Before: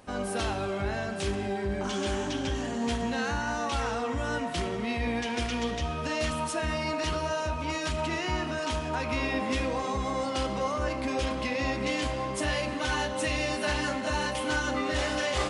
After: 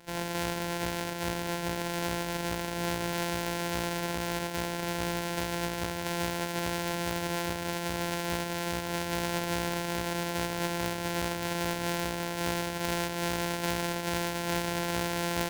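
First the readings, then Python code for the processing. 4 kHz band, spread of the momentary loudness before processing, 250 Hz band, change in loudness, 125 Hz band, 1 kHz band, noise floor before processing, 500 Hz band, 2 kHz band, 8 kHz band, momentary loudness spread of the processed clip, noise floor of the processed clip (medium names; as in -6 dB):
-0.5 dB, 3 LU, -2.0 dB, -1.5 dB, -1.0 dB, -2.0 dB, -33 dBFS, -3.0 dB, -2.5 dB, +2.5 dB, 2 LU, -35 dBFS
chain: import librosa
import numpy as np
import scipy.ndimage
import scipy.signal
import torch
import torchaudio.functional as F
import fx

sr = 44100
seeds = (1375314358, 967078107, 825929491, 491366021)

p1 = np.r_[np.sort(x[:len(x) // 256 * 256].reshape(-1, 256), axis=1).ravel(), x[len(x) // 256 * 256:]]
p2 = fx.low_shelf(p1, sr, hz=230.0, db=-11.5)
p3 = fx.notch(p2, sr, hz=1200.0, q=12.0)
p4 = 10.0 ** (-31.0 / 20.0) * np.tanh(p3 / 10.0 ** (-31.0 / 20.0))
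y = p3 + F.gain(torch.from_numpy(p4), -9.0).numpy()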